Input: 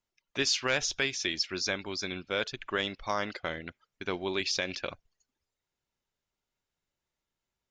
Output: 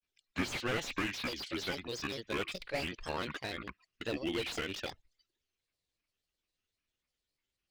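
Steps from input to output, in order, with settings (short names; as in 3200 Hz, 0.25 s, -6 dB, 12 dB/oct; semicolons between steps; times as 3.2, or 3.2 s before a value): thirty-one-band EQ 160 Hz -12 dB, 630 Hz -9 dB, 1000 Hz -12 dB, 3150 Hz +9 dB; grains, spray 11 ms, pitch spread up and down by 7 st; slew limiter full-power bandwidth 40 Hz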